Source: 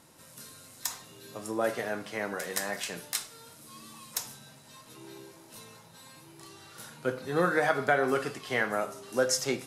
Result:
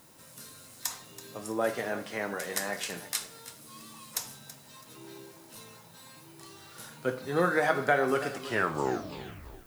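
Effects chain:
turntable brake at the end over 1.26 s
background noise violet −62 dBFS
feedback echo at a low word length 329 ms, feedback 35%, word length 8 bits, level −14.5 dB

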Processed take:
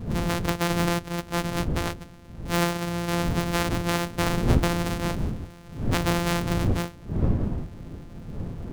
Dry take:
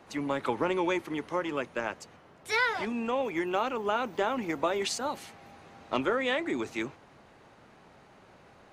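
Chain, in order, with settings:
samples sorted by size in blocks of 256 samples
wind on the microphone 170 Hz −33 dBFS
highs frequency-modulated by the lows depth 0.83 ms
level +4 dB

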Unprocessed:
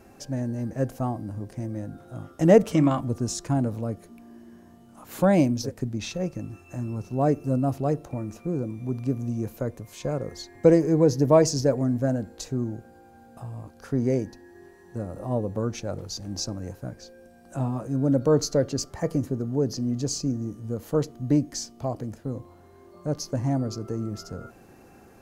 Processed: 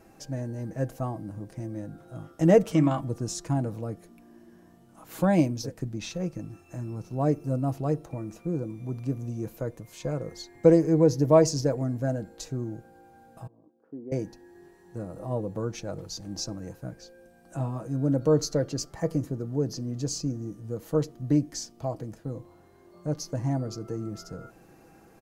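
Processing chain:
0:13.47–0:14.12: four-pole ladder band-pass 350 Hz, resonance 40%
comb filter 6.2 ms, depth 41%
level −3.5 dB

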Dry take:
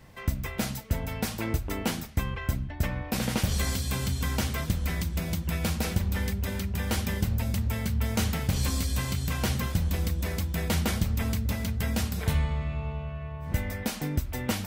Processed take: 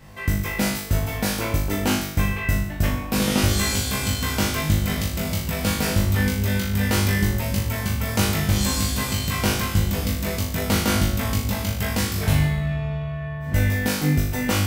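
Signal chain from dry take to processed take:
flutter between parallel walls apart 3.4 metres, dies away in 0.67 s
level +4 dB

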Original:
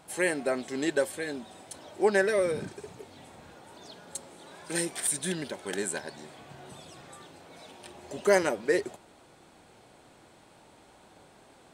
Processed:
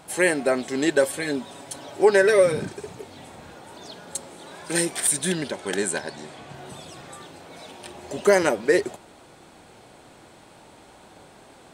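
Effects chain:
0:01.02–0:02.55: comb filter 7.2 ms, depth 60%
0:05.38–0:06.54: low-pass filter 11,000 Hz 12 dB per octave
boost into a limiter +13 dB
level −6 dB

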